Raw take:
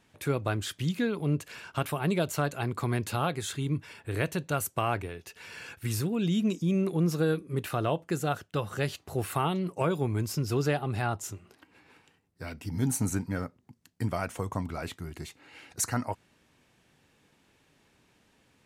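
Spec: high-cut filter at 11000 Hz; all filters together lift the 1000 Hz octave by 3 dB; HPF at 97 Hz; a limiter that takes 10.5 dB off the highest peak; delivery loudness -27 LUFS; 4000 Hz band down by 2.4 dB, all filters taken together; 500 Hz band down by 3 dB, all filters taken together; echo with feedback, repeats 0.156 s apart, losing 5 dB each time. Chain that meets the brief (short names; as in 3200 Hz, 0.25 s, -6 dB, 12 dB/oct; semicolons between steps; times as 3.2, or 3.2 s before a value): HPF 97 Hz; LPF 11000 Hz; bell 500 Hz -5.5 dB; bell 1000 Hz +6 dB; bell 4000 Hz -3.5 dB; limiter -22.5 dBFS; feedback echo 0.156 s, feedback 56%, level -5 dB; gain +6 dB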